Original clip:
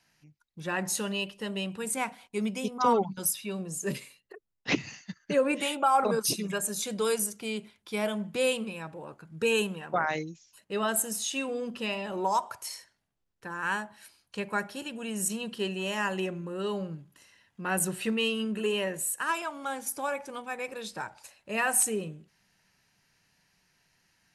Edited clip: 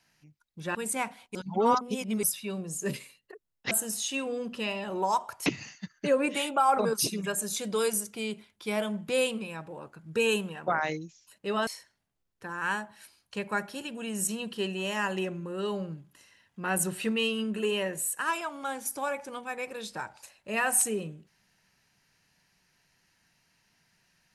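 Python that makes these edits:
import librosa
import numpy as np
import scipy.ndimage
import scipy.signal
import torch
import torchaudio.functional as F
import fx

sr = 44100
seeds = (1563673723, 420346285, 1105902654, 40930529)

y = fx.edit(x, sr, fx.cut(start_s=0.75, length_s=1.01),
    fx.reverse_span(start_s=2.36, length_s=0.88),
    fx.move(start_s=10.93, length_s=1.75, to_s=4.72), tone=tone)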